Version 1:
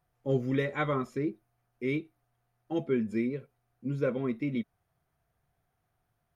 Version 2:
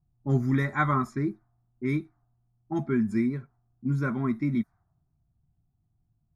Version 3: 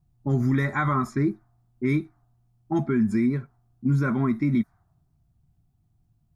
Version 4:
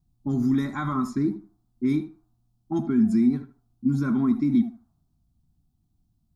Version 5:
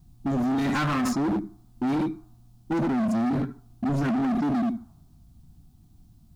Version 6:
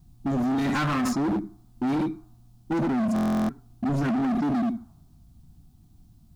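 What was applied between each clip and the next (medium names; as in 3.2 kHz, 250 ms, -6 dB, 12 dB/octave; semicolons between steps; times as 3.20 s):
static phaser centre 1.2 kHz, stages 4; level-controlled noise filter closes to 300 Hz, open at -32 dBFS; trim +8.5 dB
peak limiter -21 dBFS, peak gain reduction 9 dB; trim +6 dB
graphic EQ 125/250/500/2000/4000 Hz -8/+7/-11/-12/+4 dB; tape echo 77 ms, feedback 22%, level -10.5 dB, low-pass 2.3 kHz
in parallel at +3 dB: compressor with a negative ratio -32 dBFS, ratio -1; on the sum: hard clipper -25 dBFS, distortion -7 dB; trim +2 dB
buffer glitch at 3.14 s, samples 1024, times 14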